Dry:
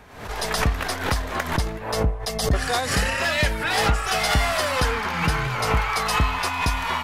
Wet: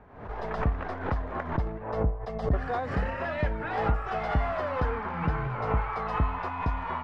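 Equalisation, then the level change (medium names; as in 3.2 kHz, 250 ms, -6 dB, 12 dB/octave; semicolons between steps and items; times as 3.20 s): low-pass 1.2 kHz 12 dB/octave; -4.5 dB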